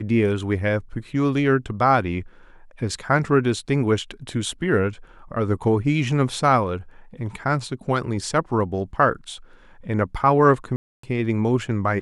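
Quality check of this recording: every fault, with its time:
10.76–11.03 gap 0.274 s

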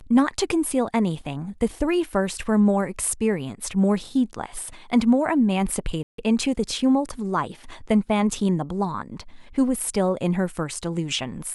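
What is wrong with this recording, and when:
6.03–6.18 gap 0.153 s

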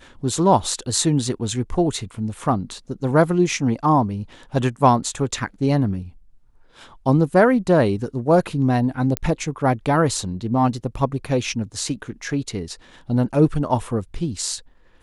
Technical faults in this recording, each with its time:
9.17 pop -6 dBFS

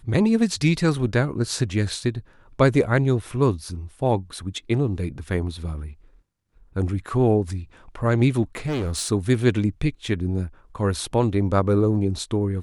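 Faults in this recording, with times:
8.55–9.08 clipped -22 dBFS

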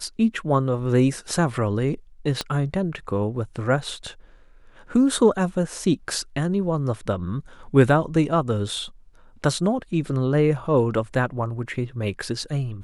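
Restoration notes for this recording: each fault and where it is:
2.41 pop -10 dBFS

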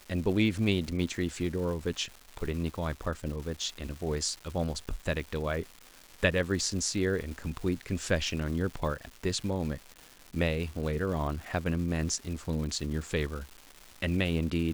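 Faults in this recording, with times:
crackle 490/s -39 dBFS

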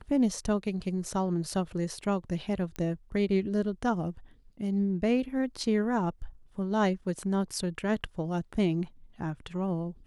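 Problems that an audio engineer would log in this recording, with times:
2.76 pop -22 dBFS

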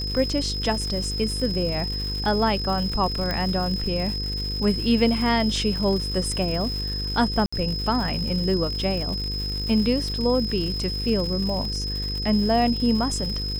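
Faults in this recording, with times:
buzz 50 Hz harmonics 10 -30 dBFS
crackle 220/s -30 dBFS
tone 5100 Hz -29 dBFS
3.31 pop -13 dBFS
7.46–7.53 gap 65 ms

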